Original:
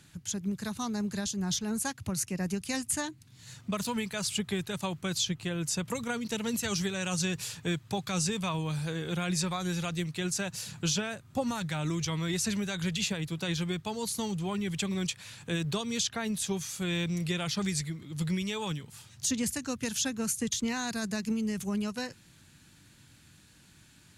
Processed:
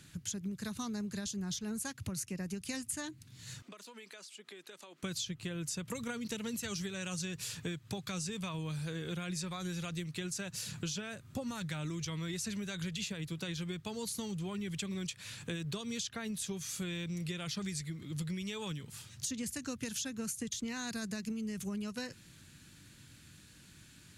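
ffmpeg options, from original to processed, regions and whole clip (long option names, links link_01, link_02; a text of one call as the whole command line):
ffmpeg -i in.wav -filter_complex "[0:a]asettb=1/sr,asplit=3[link_01][link_02][link_03];[link_01]atrim=end=3.624[link_04];[link_02]atrim=start=3.62:end=5.03,asetpts=PTS-STARTPTS,afade=type=in:duration=0.004:curve=qsin,afade=type=out:start_time=1.406:duration=0.004:curve=qsin,highpass=frequency=310:width=0.5412,highpass=frequency=310:width=1.3066,acompressor=threshold=-47dB:ratio=12:attack=3.2:release=140:knee=1:detection=peak,highshelf=frequency=11000:gain=-11.5[link_05];[link_03]atrim=start=5.026[link_06];[link_04][link_05]acrossfade=duration=0.004:curve1=hsin:curve2=qsin[link_07];[link_07][link_06]acrossfade=duration=0.004:curve1=qsin:curve2=hsin,equalizer=frequency=820:width_type=o:width=0.7:gain=-6,acompressor=threshold=-37dB:ratio=6,volume=1dB" out.wav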